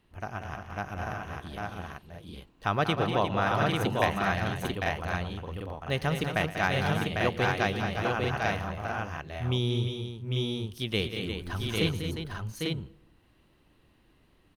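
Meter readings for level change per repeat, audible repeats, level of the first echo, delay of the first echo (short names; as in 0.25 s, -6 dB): no steady repeat, 6, -17.0 dB, 0.116 s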